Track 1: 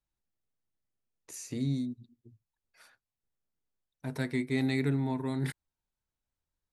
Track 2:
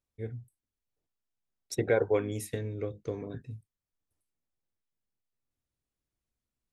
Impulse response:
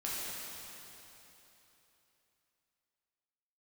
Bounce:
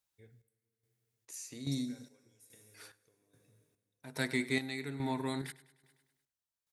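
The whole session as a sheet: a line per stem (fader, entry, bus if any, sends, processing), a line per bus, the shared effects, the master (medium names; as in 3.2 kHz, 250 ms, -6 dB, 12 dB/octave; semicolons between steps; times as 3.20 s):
+1.5 dB, 0.00 s, no send, echo send -17 dB, tilt EQ +2.5 dB/octave
0.0 dB, 0.00 s, send -13.5 dB, no echo send, compression 2.5:1, threshold -39 dBFS, peak gain reduction 12.5 dB; pre-emphasis filter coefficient 0.9; auto duck -9 dB, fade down 1.00 s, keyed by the first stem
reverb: on, RT60 3.4 s, pre-delay 5 ms
echo: feedback delay 101 ms, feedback 52%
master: high-pass 46 Hz; treble shelf 10 kHz -4 dB; square tremolo 1.2 Hz, depth 65%, duty 50%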